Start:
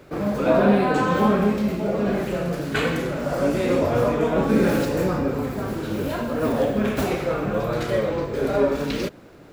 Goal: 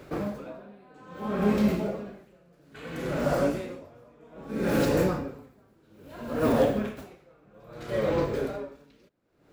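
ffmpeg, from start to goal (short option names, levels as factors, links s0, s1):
-af "aeval=exprs='val(0)*pow(10,-34*(0.5-0.5*cos(2*PI*0.61*n/s))/20)':c=same"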